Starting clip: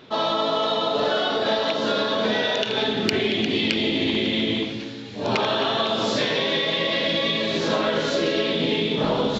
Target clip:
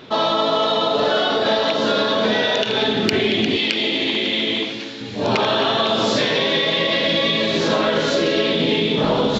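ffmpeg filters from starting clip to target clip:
-filter_complex "[0:a]asettb=1/sr,asplit=3[s0][s1][s2];[s0]atrim=end=3.564[s3];[s1]atrim=start=3.56:end=5.01,asetpts=PTS-STARTPTS,afade=t=in:d=0.004:c=qsin,afade=t=out:st=1.446:d=0.004:c=qsin,highpass=f=530:p=1[s4];[s2]atrim=start=5.006[s5];[s3][s4]acrossfade=d=0.004:c1=hsin:c2=qsin[s6];[s6][s5]acrossfade=d=0.004:c1=qsin:c2=hsin,asplit=2[s7][s8];[s8]alimiter=limit=0.119:level=0:latency=1:release=103,volume=1.12[s9];[s7][s9]amix=inputs=2:normalize=0"

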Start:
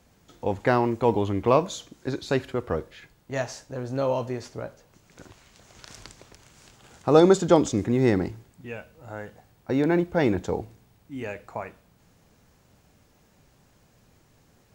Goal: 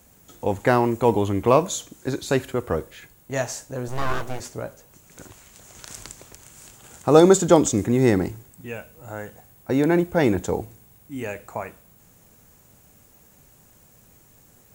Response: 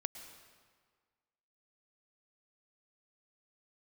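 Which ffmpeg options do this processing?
-filter_complex "[0:a]aexciter=amount=2.3:drive=8.5:freq=6800,asettb=1/sr,asplit=3[s0][s1][s2];[s0]atrim=end=3.884[s3];[s1]atrim=start=3.88:end=4.4,asetpts=PTS-STARTPTS,afade=t=in:d=0.004:c=qsin,afade=t=out:st=0.516:d=0.004:c=qsin,aeval=exprs='abs(val(0))':c=same[s4];[s2]atrim=start=4.396[s5];[s3][s4]acrossfade=d=0.004:c1=hsin:c2=qsin[s6];[s6][s5]acrossfade=d=0.004:c1=qsin:c2=hsin,volume=1.41"

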